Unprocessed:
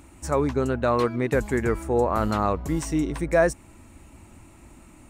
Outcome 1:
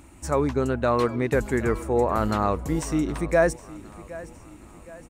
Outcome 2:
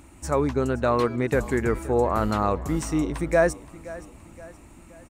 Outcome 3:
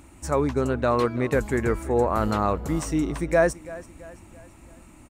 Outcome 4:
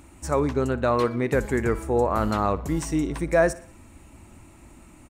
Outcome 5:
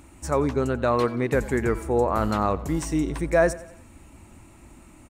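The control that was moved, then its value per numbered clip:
feedback echo, time: 766, 522, 334, 60, 90 ms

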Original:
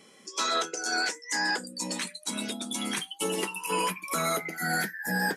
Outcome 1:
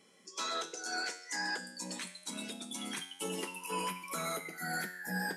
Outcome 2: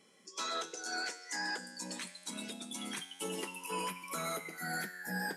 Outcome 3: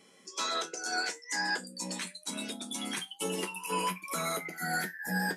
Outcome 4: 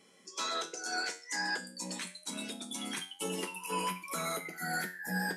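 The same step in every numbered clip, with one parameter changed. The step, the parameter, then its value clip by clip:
resonator, decay: 0.87, 1.9, 0.16, 0.4 s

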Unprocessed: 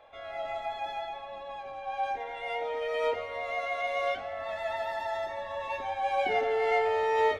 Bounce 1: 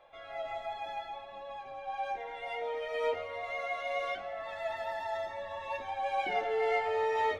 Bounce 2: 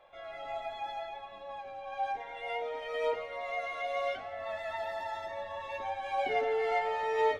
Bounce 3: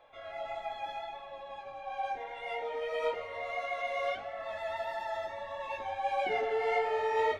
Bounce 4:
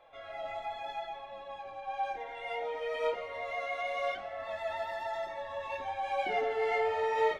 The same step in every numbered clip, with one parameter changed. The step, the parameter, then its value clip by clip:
flange, rate: 0.47, 0.29, 1.6, 0.95 Hz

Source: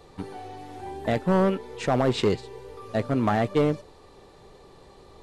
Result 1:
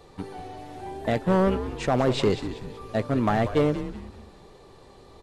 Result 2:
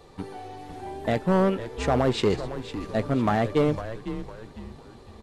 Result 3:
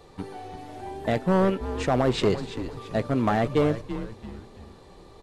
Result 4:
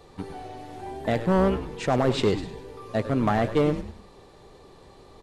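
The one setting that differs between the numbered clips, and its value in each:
frequency-shifting echo, time: 0.189, 0.504, 0.337, 0.1 s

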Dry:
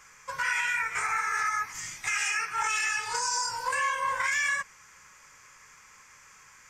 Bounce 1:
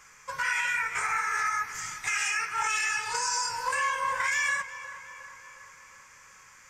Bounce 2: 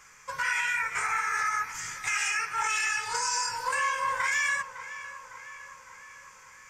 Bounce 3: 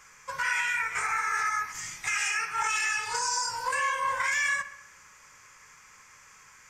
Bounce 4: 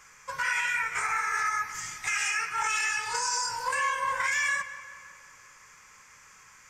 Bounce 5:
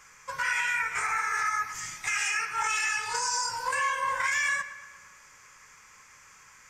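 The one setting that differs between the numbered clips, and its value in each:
darkening echo, time: 360, 557, 66, 180, 116 ms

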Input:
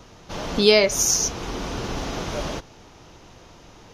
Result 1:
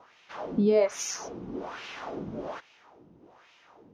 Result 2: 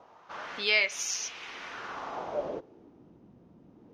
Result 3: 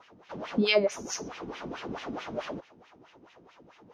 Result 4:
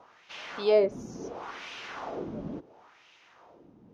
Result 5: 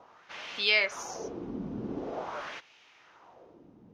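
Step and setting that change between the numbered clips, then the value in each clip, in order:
wah, rate: 1.2, 0.22, 4.6, 0.72, 0.45 Hz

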